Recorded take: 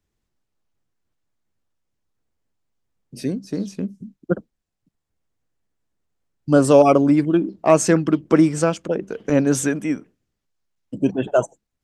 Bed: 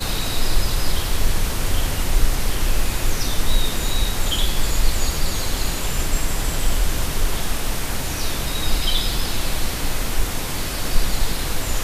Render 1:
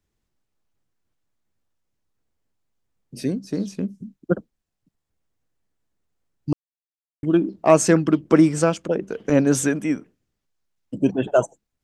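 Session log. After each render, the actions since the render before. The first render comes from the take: 6.53–7.23 s: mute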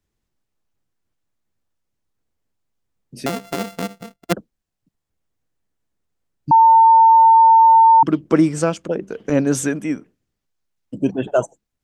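3.26–4.33 s: sorted samples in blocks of 64 samples; 6.51–8.03 s: bleep 902 Hz -6.5 dBFS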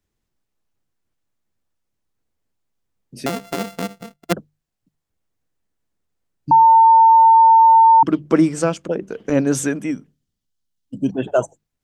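hum notches 50/100/150 Hz; 9.91–11.14 s: time-frequency box 300–2800 Hz -7 dB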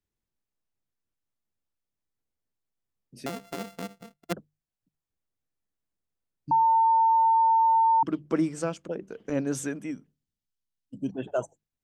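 trim -11 dB

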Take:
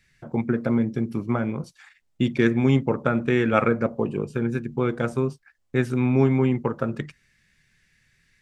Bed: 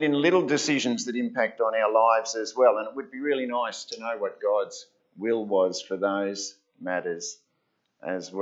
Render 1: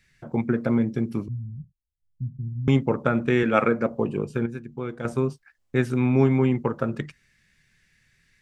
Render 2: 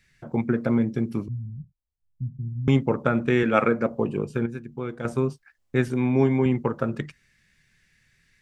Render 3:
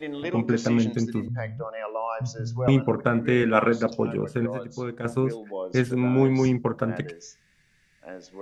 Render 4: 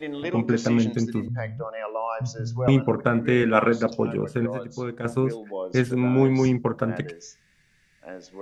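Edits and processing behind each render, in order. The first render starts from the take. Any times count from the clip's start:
1.28–2.68 s: inverse Chebyshev low-pass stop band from 600 Hz, stop band 70 dB; 3.43–3.90 s: high-pass 150 Hz; 4.46–5.05 s: gain -8 dB
1.46–2.45 s: low-pass 1.1 kHz 24 dB/octave; 5.88–6.46 s: comb of notches 1.3 kHz
add bed -10 dB
trim +1 dB

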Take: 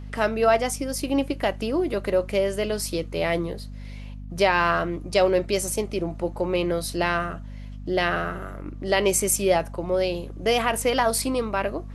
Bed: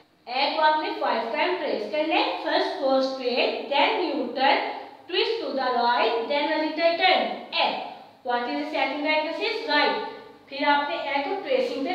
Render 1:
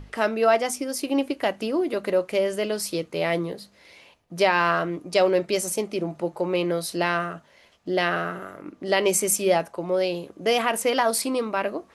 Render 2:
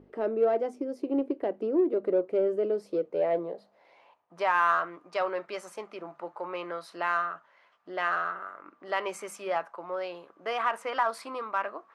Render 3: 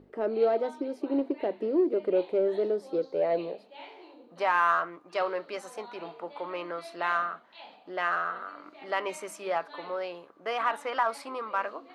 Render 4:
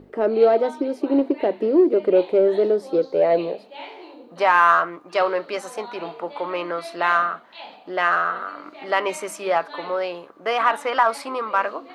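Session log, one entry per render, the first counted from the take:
hum notches 50/100/150/200/250 Hz
band-pass sweep 390 Hz -> 1.2 kHz, 2.69–4.57 s; in parallel at -10 dB: saturation -28.5 dBFS, distortion -9 dB
add bed -25.5 dB
trim +9 dB

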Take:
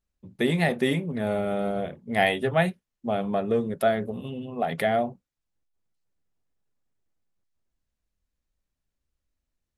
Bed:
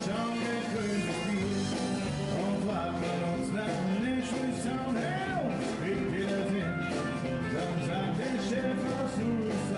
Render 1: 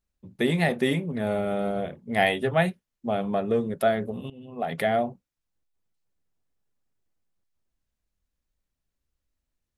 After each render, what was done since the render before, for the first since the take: 4.30–4.99 s: fade in equal-power, from -16 dB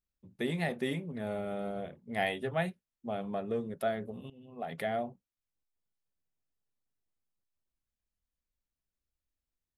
trim -9.5 dB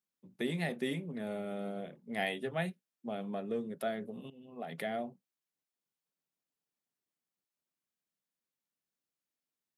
high-pass 150 Hz 24 dB/octave; dynamic bell 900 Hz, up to -5 dB, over -45 dBFS, Q 0.71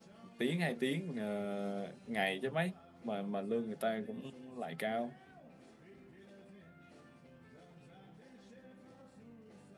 add bed -26.5 dB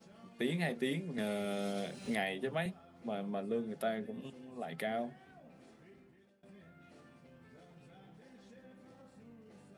1.18–2.66 s: three bands compressed up and down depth 100%; 5.81–6.43 s: fade out, to -22.5 dB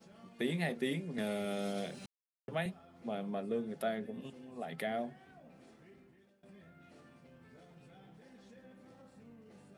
2.06–2.48 s: mute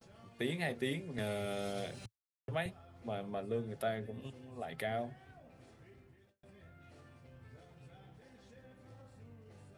gate with hold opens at -56 dBFS; resonant low shelf 140 Hz +8 dB, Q 3

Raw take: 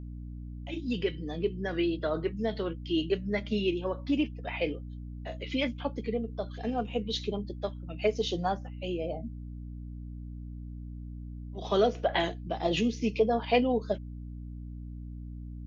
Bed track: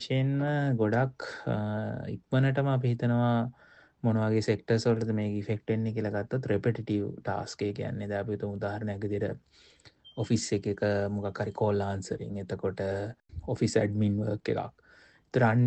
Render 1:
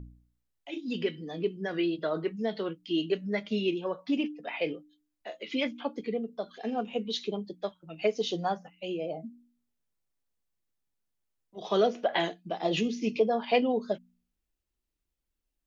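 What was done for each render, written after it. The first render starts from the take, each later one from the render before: de-hum 60 Hz, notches 5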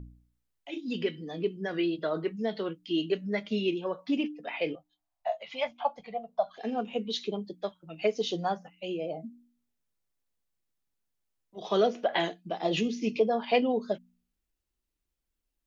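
4.75–6.58 s: FFT filter 140 Hz 0 dB, 360 Hz -27 dB, 700 Hz +15 dB, 1.5 kHz -2 dB, 6.6 kHz -5 dB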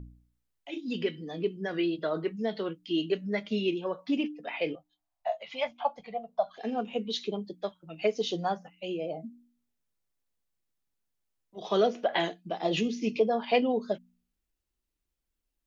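no audible change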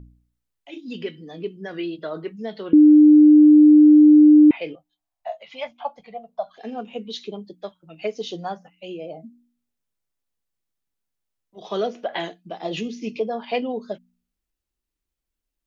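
2.73–4.51 s: bleep 301 Hz -7 dBFS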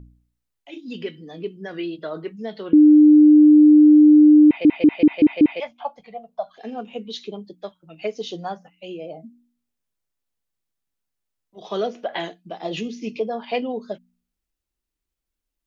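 4.46 s: stutter in place 0.19 s, 6 plays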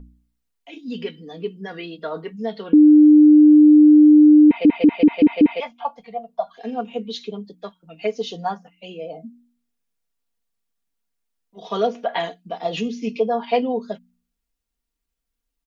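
dynamic bell 960 Hz, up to +5 dB, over -37 dBFS, Q 1.4; comb 4.3 ms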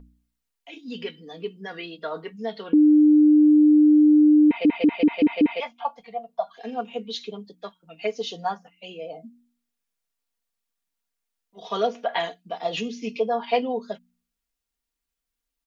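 bass shelf 450 Hz -7.5 dB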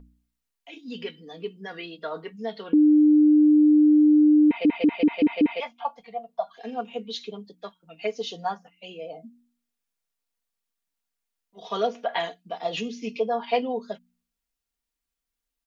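trim -1.5 dB

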